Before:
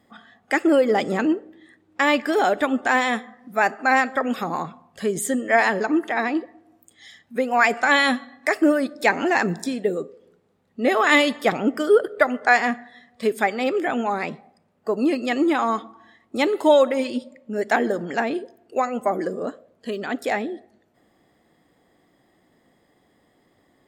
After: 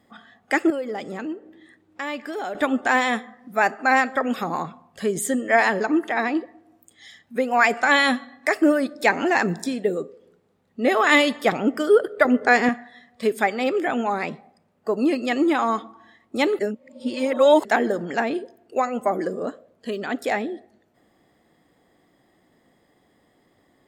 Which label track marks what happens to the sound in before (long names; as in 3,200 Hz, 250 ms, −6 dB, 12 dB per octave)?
0.700000	2.550000	downward compressor 1.5 to 1, threshold −45 dBFS
12.250000	12.690000	low shelf with overshoot 560 Hz +7.5 dB, Q 1.5
16.590000	17.650000	reverse